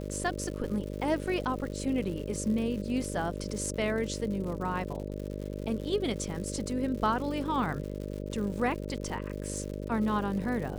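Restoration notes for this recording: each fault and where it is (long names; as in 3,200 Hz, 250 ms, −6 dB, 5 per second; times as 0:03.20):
mains buzz 50 Hz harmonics 12 −37 dBFS
surface crackle 150 per second −38 dBFS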